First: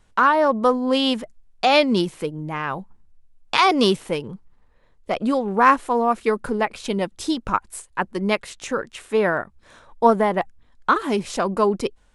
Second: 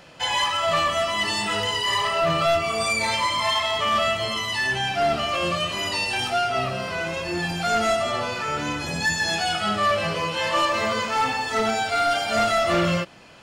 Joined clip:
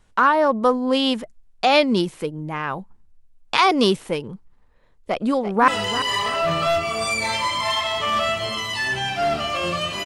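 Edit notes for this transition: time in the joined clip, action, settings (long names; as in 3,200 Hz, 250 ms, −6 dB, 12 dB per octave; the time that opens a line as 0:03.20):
first
0:05.03–0:05.68: delay throw 340 ms, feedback 40%, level −11 dB
0:05.68: continue with second from 0:01.47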